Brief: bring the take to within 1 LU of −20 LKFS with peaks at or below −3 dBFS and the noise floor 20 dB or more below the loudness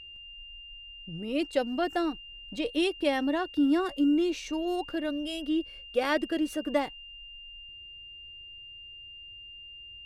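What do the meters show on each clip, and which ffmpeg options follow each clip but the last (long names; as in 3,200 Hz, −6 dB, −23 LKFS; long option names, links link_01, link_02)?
interfering tone 2,800 Hz; level of the tone −44 dBFS; integrated loudness −29.5 LKFS; sample peak −13.0 dBFS; target loudness −20.0 LKFS
→ -af "bandreject=frequency=2800:width=30"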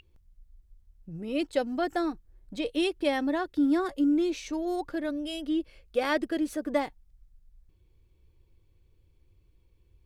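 interfering tone none found; integrated loudness −29.5 LKFS; sample peak −13.0 dBFS; target loudness −20.0 LKFS
→ -af "volume=9.5dB"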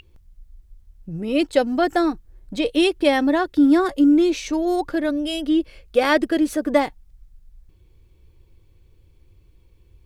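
integrated loudness −20.0 LKFS; sample peak −3.5 dBFS; background noise floor −55 dBFS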